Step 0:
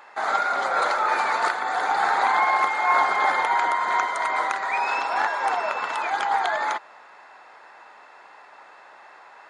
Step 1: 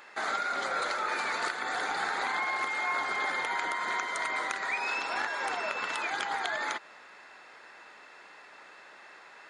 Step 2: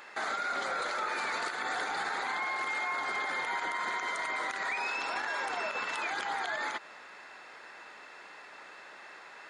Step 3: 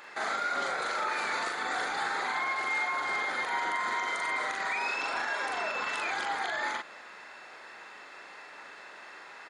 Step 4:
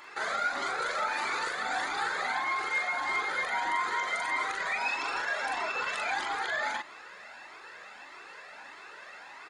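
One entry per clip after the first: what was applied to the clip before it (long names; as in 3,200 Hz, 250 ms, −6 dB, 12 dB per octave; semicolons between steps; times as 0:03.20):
parametric band 850 Hz −11.5 dB 1.4 octaves; downward compressor 3 to 1, threshold −32 dBFS, peak gain reduction 7.5 dB; level +2.5 dB
brickwall limiter −27 dBFS, peak gain reduction 11 dB; level +2 dB
double-tracking delay 41 ms −2.5 dB
flanger whose copies keep moving one way rising 1.6 Hz; level +4.5 dB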